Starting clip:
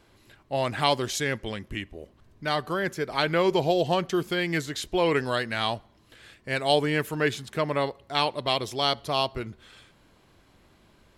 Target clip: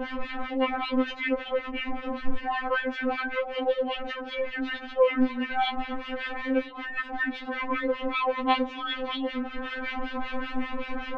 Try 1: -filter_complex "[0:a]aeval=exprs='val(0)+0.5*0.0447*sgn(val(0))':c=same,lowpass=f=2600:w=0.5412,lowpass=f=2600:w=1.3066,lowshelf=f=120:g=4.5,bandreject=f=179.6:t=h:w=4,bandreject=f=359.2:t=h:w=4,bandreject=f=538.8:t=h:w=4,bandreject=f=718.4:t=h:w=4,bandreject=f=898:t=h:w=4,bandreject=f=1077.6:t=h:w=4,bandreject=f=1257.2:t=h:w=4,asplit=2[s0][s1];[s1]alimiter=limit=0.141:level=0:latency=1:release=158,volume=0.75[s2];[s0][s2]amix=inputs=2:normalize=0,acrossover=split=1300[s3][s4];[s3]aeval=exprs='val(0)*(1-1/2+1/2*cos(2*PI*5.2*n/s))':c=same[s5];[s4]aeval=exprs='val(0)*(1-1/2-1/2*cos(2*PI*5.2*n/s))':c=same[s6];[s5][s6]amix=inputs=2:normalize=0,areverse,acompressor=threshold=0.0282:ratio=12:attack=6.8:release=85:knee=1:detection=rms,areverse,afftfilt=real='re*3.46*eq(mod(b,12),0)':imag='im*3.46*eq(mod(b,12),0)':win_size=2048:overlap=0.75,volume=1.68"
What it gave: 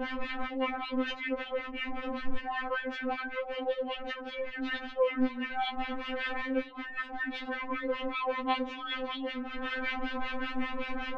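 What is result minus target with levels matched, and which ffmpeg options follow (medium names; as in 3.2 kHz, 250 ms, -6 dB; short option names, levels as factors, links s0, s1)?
compression: peak gain reduction +6.5 dB
-filter_complex "[0:a]aeval=exprs='val(0)+0.5*0.0447*sgn(val(0))':c=same,lowpass=f=2600:w=0.5412,lowpass=f=2600:w=1.3066,lowshelf=f=120:g=4.5,bandreject=f=179.6:t=h:w=4,bandreject=f=359.2:t=h:w=4,bandreject=f=538.8:t=h:w=4,bandreject=f=718.4:t=h:w=4,bandreject=f=898:t=h:w=4,bandreject=f=1077.6:t=h:w=4,bandreject=f=1257.2:t=h:w=4,asplit=2[s0][s1];[s1]alimiter=limit=0.141:level=0:latency=1:release=158,volume=0.75[s2];[s0][s2]amix=inputs=2:normalize=0,acrossover=split=1300[s3][s4];[s3]aeval=exprs='val(0)*(1-1/2+1/2*cos(2*PI*5.2*n/s))':c=same[s5];[s4]aeval=exprs='val(0)*(1-1/2-1/2*cos(2*PI*5.2*n/s))':c=same[s6];[s5][s6]amix=inputs=2:normalize=0,areverse,acompressor=threshold=0.0631:ratio=12:attack=6.8:release=85:knee=1:detection=rms,areverse,afftfilt=real='re*3.46*eq(mod(b,12),0)':imag='im*3.46*eq(mod(b,12),0)':win_size=2048:overlap=0.75,volume=1.68"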